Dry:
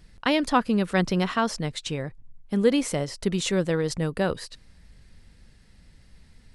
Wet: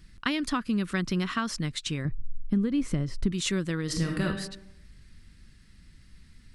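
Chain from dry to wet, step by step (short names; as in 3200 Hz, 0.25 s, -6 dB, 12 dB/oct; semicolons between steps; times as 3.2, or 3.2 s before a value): 2.05–3.32 tilt -3 dB/oct; compressor 6:1, threshold -22 dBFS, peak gain reduction 11.5 dB; band shelf 630 Hz -10.5 dB 1.3 oct; 3.84–4.25 reverb throw, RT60 0.81 s, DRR 0 dB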